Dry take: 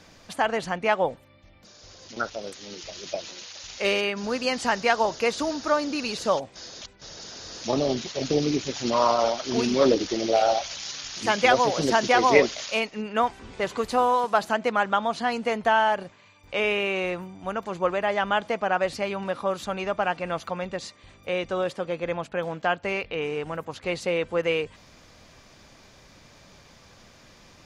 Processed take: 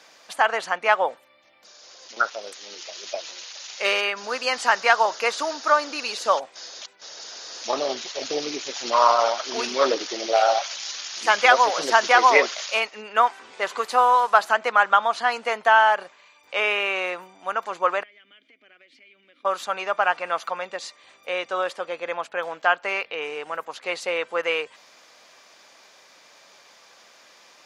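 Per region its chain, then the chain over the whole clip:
18.03–19.45 s: vowel filter i + compression 12:1, threshold -49 dBFS
whole clip: high-pass 580 Hz 12 dB/octave; dynamic bell 1.3 kHz, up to +6 dB, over -38 dBFS, Q 1.3; trim +2.5 dB

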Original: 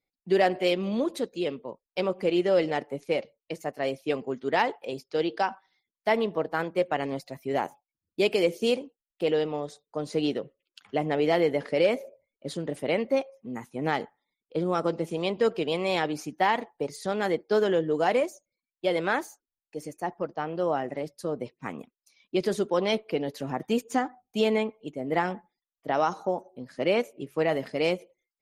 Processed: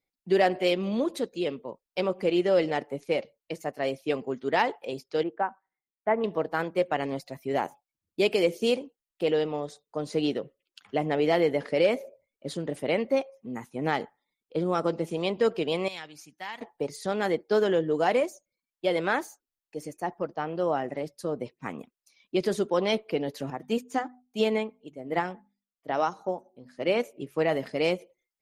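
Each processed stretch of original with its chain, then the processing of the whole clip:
5.23–6.24 s: low-pass 1.8 kHz 24 dB/octave + upward expansion, over -43 dBFS
15.88–16.61 s: high-pass 46 Hz + amplifier tone stack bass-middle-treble 5-5-5
23.50–27.00 s: hum notches 50/100/150/200/250 Hz + upward expansion, over -34 dBFS
whole clip: none

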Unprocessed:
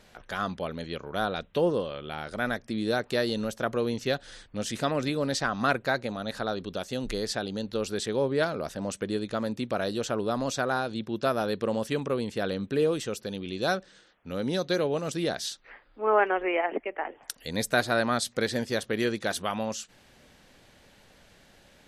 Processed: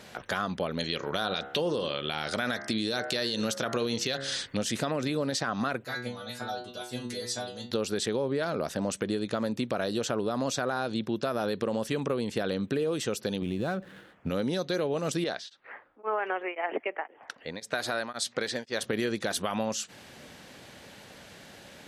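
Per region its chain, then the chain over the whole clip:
0.79–4.57 s: peaking EQ 4.8 kHz +10.5 dB 2.3 oct + de-hum 68.47 Hz, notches 31
5.84–7.71 s: treble shelf 5.6 kHz +8.5 dB + inharmonic resonator 120 Hz, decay 0.47 s, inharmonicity 0.002
13.42–14.30 s: median filter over 9 samples + tone controls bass +9 dB, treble -6 dB + compression 3:1, threshold -31 dBFS
15.24–18.81 s: level-controlled noise filter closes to 1.2 kHz, open at -21.5 dBFS + bass shelf 330 Hz -10.5 dB + tremolo of two beating tones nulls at 1.9 Hz
whole clip: peak limiter -20 dBFS; compression 4:1, threshold -36 dBFS; high-pass 95 Hz; trim +8.5 dB

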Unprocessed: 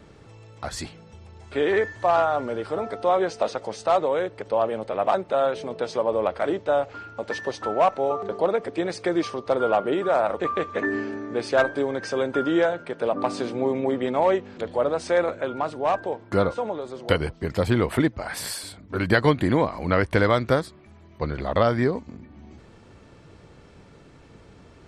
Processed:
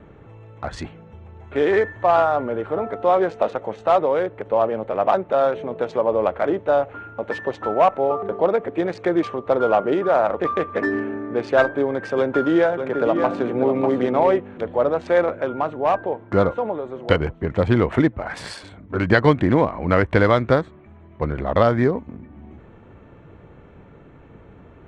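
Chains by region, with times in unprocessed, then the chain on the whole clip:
12.18–14.39 s: delay 593 ms -7.5 dB + three bands compressed up and down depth 40%
whole clip: local Wiener filter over 9 samples; Bessel low-pass 6.3 kHz, order 8; treble shelf 4.8 kHz -5.5 dB; trim +4 dB

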